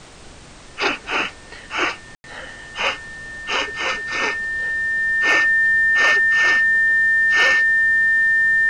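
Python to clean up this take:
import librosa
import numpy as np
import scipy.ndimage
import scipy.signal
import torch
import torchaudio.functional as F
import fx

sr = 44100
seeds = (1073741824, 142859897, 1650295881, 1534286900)

y = fx.fix_declip(x, sr, threshold_db=-7.0)
y = fx.notch(y, sr, hz=1800.0, q=30.0)
y = fx.fix_ambience(y, sr, seeds[0], print_start_s=0.0, print_end_s=0.5, start_s=2.15, end_s=2.24)
y = fx.noise_reduce(y, sr, print_start_s=0.0, print_end_s=0.5, reduce_db=24.0)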